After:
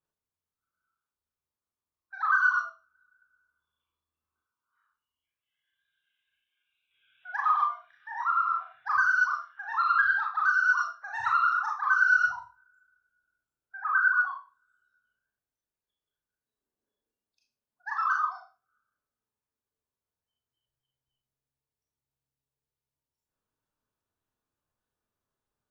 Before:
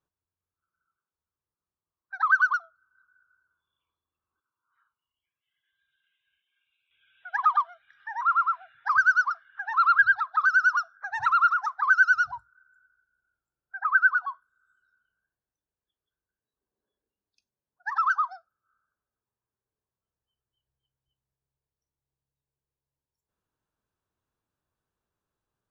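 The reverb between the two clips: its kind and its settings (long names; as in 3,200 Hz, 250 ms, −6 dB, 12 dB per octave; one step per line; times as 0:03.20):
four-comb reverb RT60 0.33 s, combs from 26 ms, DRR −2 dB
level −6 dB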